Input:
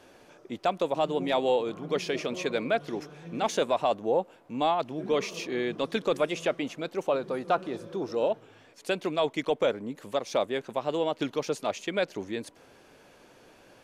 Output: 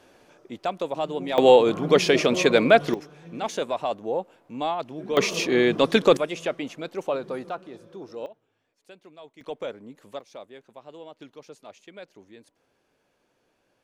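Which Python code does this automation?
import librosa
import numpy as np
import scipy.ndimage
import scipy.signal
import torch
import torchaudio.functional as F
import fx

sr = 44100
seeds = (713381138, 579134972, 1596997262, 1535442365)

y = fx.gain(x, sr, db=fx.steps((0.0, -1.0), (1.38, 11.0), (2.94, -1.5), (5.17, 10.0), (6.17, 0.0), (7.49, -7.5), (8.26, -19.5), (9.41, -7.5), (10.21, -15.0)))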